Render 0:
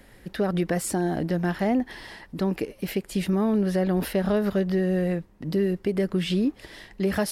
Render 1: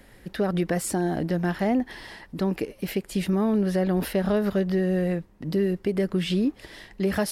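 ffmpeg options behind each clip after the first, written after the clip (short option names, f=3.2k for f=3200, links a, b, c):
-af anull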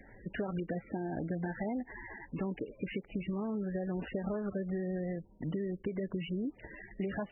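-af "acompressor=threshold=-29dB:ratio=10,volume=-3dB" -ar 24000 -c:a libmp3lame -b:a 8k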